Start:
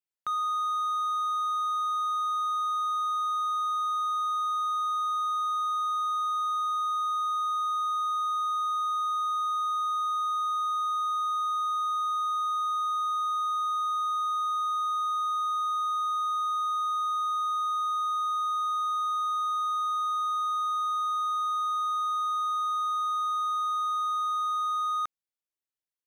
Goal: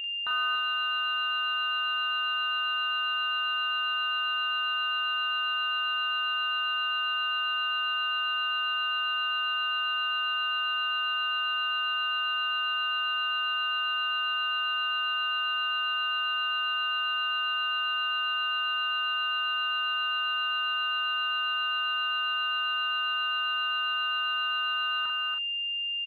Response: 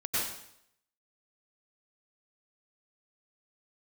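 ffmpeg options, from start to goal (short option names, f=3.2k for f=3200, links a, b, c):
-filter_complex "[0:a]acrusher=samples=16:mix=1:aa=0.000001,acontrast=49,asoftclip=type=tanh:threshold=-30dB,aeval=exprs='val(0)+0.0251*sin(2*PI*2800*n/s)':c=same,asplit=2[a][b];[b]adelay=41,volume=-5.5dB[c];[a][c]amix=inputs=2:normalize=0,aecho=1:1:286:0.531,aresample=8000,aresample=44100"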